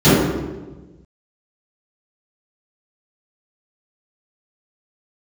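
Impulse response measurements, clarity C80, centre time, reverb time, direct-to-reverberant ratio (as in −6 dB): 0.5 dB, 108 ms, 1.2 s, −18.0 dB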